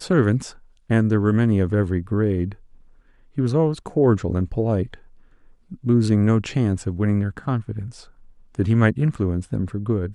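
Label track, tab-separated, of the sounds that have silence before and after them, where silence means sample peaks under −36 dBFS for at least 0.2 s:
0.900000	2.530000	sound
3.370000	4.950000	sound
5.720000	8.040000	sound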